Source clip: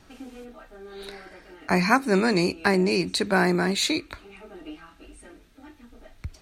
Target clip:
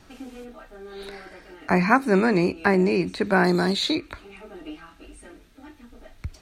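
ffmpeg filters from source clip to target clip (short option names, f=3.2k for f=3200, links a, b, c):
-filter_complex "[0:a]acrossover=split=2600[a][b];[b]acompressor=threshold=-44dB:ratio=4:attack=1:release=60[c];[a][c]amix=inputs=2:normalize=0,asettb=1/sr,asplit=3[d][e][f];[d]atrim=end=3.444[g];[e]atrim=start=3.44:end=3.95,asetpts=PTS-STARTPTS,afade=t=in:d=0.004:c=qsin,afade=t=out:st=0.506:d=0.004:c=qsin,highshelf=f=3k:t=q:w=3:g=6[h];[f]atrim=start=3.946[i];[g][h]acrossfade=d=0.004:c1=hsin:c2=qsin[j];[j][i]acrossfade=d=0.004:c1=qsin:c2=hsin,volume=2dB"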